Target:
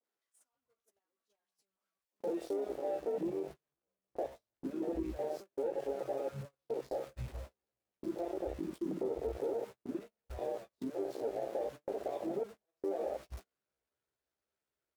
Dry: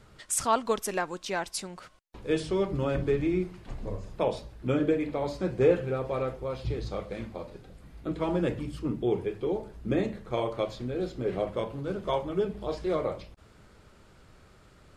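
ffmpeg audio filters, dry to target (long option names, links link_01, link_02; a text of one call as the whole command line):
ffmpeg -i in.wav -filter_complex "[0:a]aeval=exprs='val(0)+0.5*0.0562*sgn(val(0))':channel_layout=same,highshelf=frequency=2100:gain=-10,asplit=2[link_01][link_02];[link_02]adelay=16,volume=-5dB[link_03];[link_01][link_03]amix=inputs=2:normalize=0,alimiter=limit=-17dB:level=0:latency=1:release=89,acrossover=split=190|950[link_04][link_05][link_06];[link_06]adelay=40[link_07];[link_04]adelay=530[link_08];[link_08][link_05][link_07]amix=inputs=3:normalize=0,acrossover=split=230|4500[link_09][link_10][link_11];[link_10]asoftclip=type=tanh:threshold=-27.5dB[link_12];[link_09][link_12][link_11]amix=inputs=3:normalize=0,asetrate=46722,aresample=44100,atempo=0.943874,highpass=42,bass=frequency=250:gain=-14,treble=frequency=4000:gain=4,acompressor=threshold=-35dB:ratio=2.5,afwtdn=0.0562,agate=range=-40dB:threshold=-47dB:ratio=16:detection=peak,volume=2.5dB" out.wav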